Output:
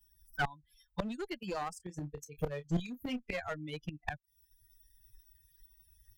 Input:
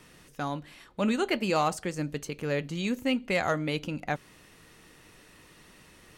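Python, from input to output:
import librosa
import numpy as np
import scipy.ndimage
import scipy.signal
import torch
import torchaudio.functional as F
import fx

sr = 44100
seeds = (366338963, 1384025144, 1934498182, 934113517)

p1 = fx.bin_expand(x, sr, power=3.0)
p2 = fx.rider(p1, sr, range_db=4, speed_s=2.0)
p3 = p1 + F.gain(torch.from_numpy(p2), -2.0).numpy()
p4 = fx.gate_flip(p3, sr, shuts_db=-30.0, range_db=-27)
p5 = fx.clip_asym(p4, sr, top_db=-53.0, bottom_db=-33.5)
p6 = fx.doubler(p5, sr, ms=28.0, db=-11, at=(1.79, 3.39), fade=0.02)
p7 = fx.band_squash(p6, sr, depth_pct=40)
y = F.gain(torch.from_numpy(p7), 16.0).numpy()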